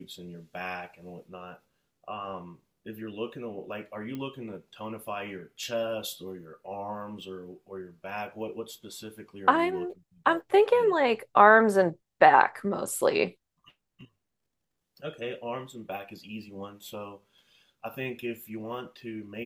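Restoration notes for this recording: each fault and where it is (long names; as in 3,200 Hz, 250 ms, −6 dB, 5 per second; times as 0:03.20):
0:04.15: click −25 dBFS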